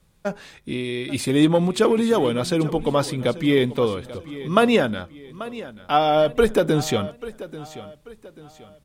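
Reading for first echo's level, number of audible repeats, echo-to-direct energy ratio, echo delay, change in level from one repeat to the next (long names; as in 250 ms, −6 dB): −16.0 dB, 3, −15.5 dB, 838 ms, −8.5 dB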